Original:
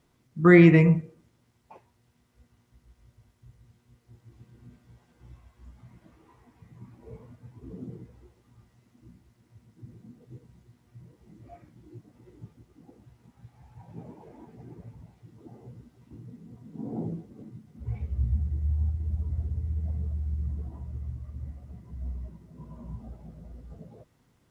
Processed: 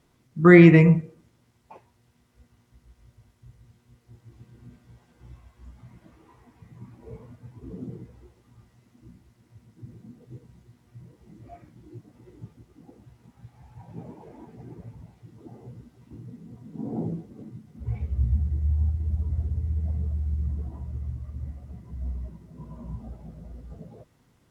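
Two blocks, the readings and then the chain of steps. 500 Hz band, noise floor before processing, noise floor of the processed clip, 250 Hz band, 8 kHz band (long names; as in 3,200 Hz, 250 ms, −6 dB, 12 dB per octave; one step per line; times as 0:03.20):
+3.0 dB, −67 dBFS, −64 dBFS, +3.0 dB, can't be measured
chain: level +3 dB
Ogg Vorbis 192 kbit/s 44,100 Hz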